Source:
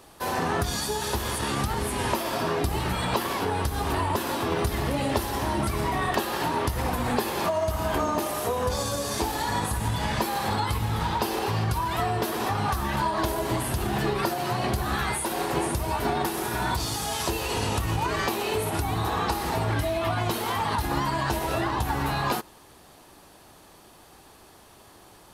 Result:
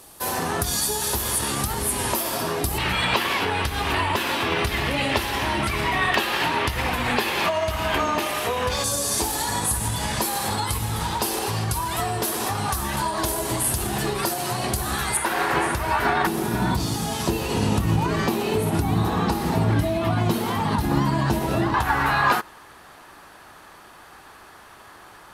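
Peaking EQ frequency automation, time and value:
peaking EQ +12.5 dB 1.6 oct
12 kHz
from 2.78 s 2.5 kHz
from 8.84 s 9.5 kHz
from 15.17 s 1.6 kHz
from 16.27 s 190 Hz
from 21.74 s 1.5 kHz

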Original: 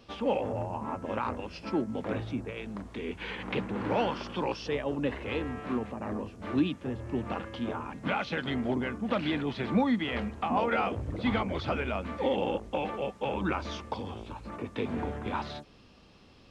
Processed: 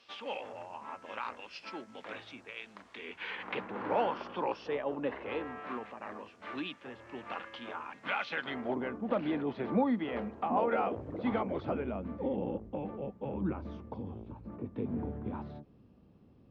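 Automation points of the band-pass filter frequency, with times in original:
band-pass filter, Q 0.67
2.71 s 3 kHz
3.96 s 840 Hz
5.34 s 840 Hz
5.99 s 2 kHz
8.23 s 2 kHz
8.96 s 510 Hz
11.40 s 510 Hz
12.25 s 160 Hz

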